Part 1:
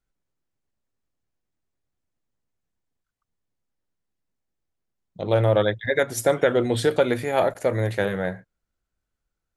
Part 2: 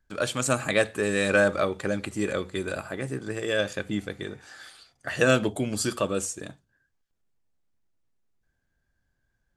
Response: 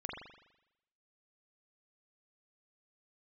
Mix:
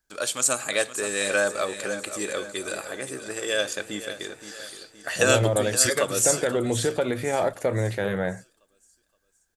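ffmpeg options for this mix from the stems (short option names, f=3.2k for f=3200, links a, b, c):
-filter_complex "[0:a]alimiter=limit=-14dB:level=0:latency=1:release=105,volume=-2.5dB[a];[1:a]bass=f=250:g=-14,treble=f=4k:g=11,volume=-2dB,asplit=2[b][c];[c]volume=-12.5dB,aecho=0:1:520|1040|1560|2080|2600|3120:1|0.46|0.212|0.0973|0.0448|0.0206[d];[a][b][d]amix=inputs=3:normalize=0,dynaudnorm=f=670:g=7:m=3dB"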